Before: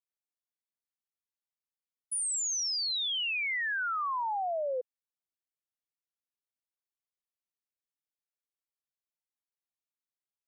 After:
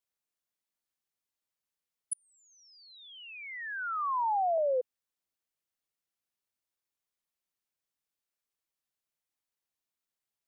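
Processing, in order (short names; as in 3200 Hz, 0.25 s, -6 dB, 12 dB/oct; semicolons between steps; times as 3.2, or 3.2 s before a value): 2.13–4.58 Chebyshev low-pass 900 Hz, order 2; gain +4 dB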